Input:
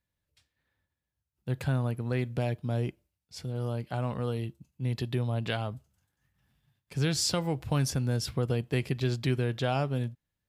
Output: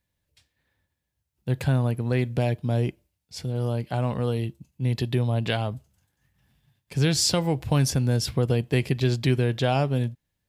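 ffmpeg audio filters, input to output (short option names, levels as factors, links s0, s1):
-af "equalizer=f=1300:w=3.2:g=-4.5,volume=2"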